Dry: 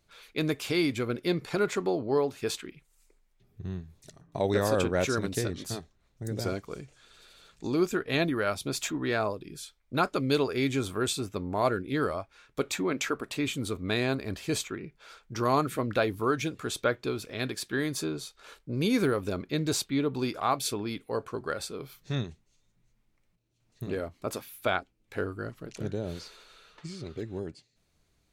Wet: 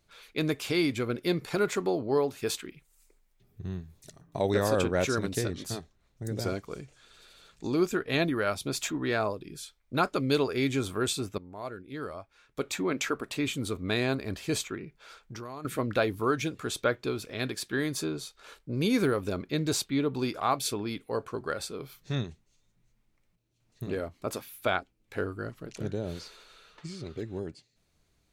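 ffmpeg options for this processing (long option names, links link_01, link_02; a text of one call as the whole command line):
ffmpeg -i in.wav -filter_complex "[0:a]asettb=1/sr,asplit=3[link_01][link_02][link_03];[link_01]atrim=end=1.214[link_04];[link_02]atrim=start=1.21:end=4.52,asetpts=PTS-STARTPTS,afade=type=in:duration=0.004:curve=qsin,afade=type=out:start_time=3.306:duration=0.004:curve=qsin,highshelf=frequency=11000:gain=8[link_05];[link_03]atrim=start=4.516[link_06];[link_04][link_05]acrossfade=duration=0.004:curve1=hsin:curve2=qsin[link_07];[link_07][link_06]acrossfade=duration=0.004:curve1=qsin:curve2=hsin,asettb=1/sr,asplit=3[link_08][link_09][link_10];[link_08]atrim=end=14.834[link_11];[link_09]atrim=start=14.83:end=15.65,asetpts=PTS-STARTPTS,afade=type=in:duration=0.004:curve=qsin,afade=type=out:start_time=0.816:duration=0.004:curve=qsin,acompressor=threshold=-38dB:ratio=6:attack=3.2:release=140:knee=1:detection=peak[link_12];[link_10]atrim=start=15.646[link_13];[link_11][link_12]acrossfade=duration=0.004:curve1=hsin:curve2=qsin[link_14];[link_14][link_13]acrossfade=duration=0.004:curve1=qsin:curve2=hsin,asplit=2[link_15][link_16];[link_15]atrim=end=11.38,asetpts=PTS-STARTPTS,afade=type=out:start_time=11.376:duration=0.004:curve=hsin:silence=0.211349[link_17];[link_16]atrim=start=11.38,asetpts=PTS-STARTPTS,afade=type=in:duration=1.51:curve=qua:silence=0.211349[link_18];[link_17][link_18]concat=n=2:v=0:a=1" out.wav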